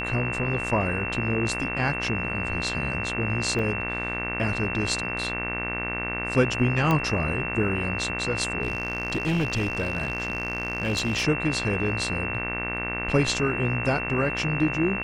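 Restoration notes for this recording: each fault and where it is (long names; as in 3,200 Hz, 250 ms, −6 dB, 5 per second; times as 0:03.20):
mains buzz 60 Hz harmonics 39 −33 dBFS
whistle 2,700 Hz −30 dBFS
0:03.59: drop-out 2.6 ms
0:06.91: click −11 dBFS
0:08.63–0:11.25: clipping −20 dBFS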